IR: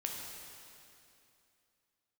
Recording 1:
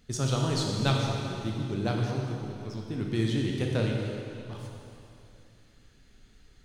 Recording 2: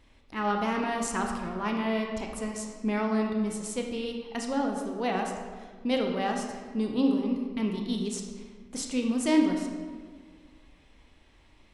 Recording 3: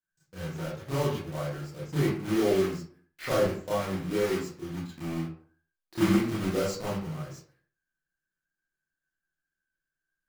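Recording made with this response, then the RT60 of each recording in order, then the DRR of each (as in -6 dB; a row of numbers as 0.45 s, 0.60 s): 1; 2.7 s, 1.7 s, 0.50 s; -0.5 dB, 2.0 dB, -9.5 dB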